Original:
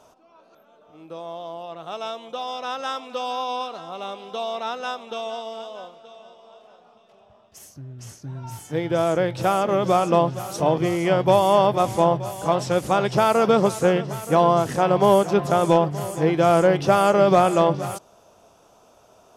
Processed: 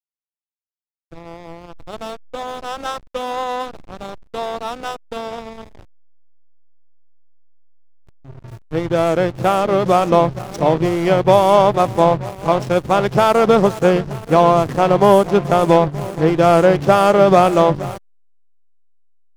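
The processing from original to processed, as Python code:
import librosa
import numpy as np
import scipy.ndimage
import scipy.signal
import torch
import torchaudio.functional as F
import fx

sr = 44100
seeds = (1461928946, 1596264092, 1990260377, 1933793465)

y = fx.backlash(x, sr, play_db=-24.0)
y = F.gain(torch.from_numpy(y), 5.5).numpy()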